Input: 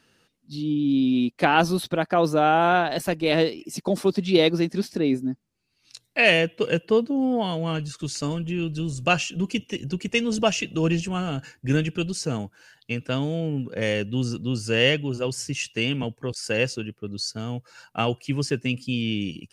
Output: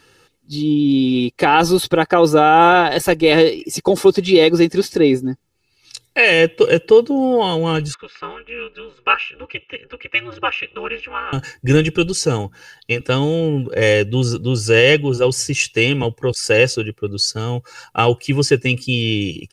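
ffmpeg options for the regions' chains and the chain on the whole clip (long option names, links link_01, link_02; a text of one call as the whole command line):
ffmpeg -i in.wav -filter_complex "[0:a]asettb=1/sr,asplit=3[link_01][link_02][link_03];[link_01]atrim=end=7.944[link_04];[link_02]atrim=start=7.94:end=11.33,asetpts=PTS-STARTPTS,afade=type=in:duration=0.004:curve=qsin,afade=type=out:start_time=3.386:duration=0.004:curve=qsin,highpass=frequency=450:width=0.5412,highpass=frequency=450:width=1.3066,equalizer=frequency=480:width_type=q:width=4:gain=-9,equalizer=frequency=940:width_type=q:width=4:gain=-8,equalizer=frequency=1800:width_type=q:width=4:gain=5,lowpass=frequency=2500:width=0.5412,lowpass=frequency=2500:width=1.3066,aecho=1:1:0.8:0.68,atrim=end_sample=149499,aeval=exprs='val(0)*sin(2*PI*120*n/s)':channel_layout=same[link_05];[link_03]atrim=start=11.326[link_06];[link_04][link_05]acrossfade=duration=0.004:curve1=hsin:curve2=qsin[link_07];[link_07][link_06]acrossfade=duration=0.004:curve1=qsin:curve2=hsin,asettb=1/sr,asplit=3[link_08][link_09][link_10];[link_08]atrim=end=12.424[link_11];[link_09]atrim=start=12.42:end=13.01,asetpts=PTS-STARTPTS,afade=type=in:duration=0.004:curve=qsin,afade=type=out:start_time=0.586:duration=0.004:curve=qsin,bandreject=frequency=7700:width=5.1,bandreject=frequency=59.62:width_type=h:width=4,bandreject=frequency=119.24:width_type=h:width=4,bandreject=frequency=178.86:width_type=h:width=4,bandreject=frequency=238.48:width_type=h:width=4[link_12];[link_10]atrim=start=13.006[link_13];[link_11][link_12]acrossfade=duration=0.004:curve1=hsin:curve2=qsin[link_14];[link_14][link_13]acrossfade=duration=0.004:curve1=qsin:curve2=hsin,aecho=1:1:2.3:0.63,alimiter=level_in=10dB:limit=-1dB:release=50:level=0:latency=1,volume=-1dB" out.wav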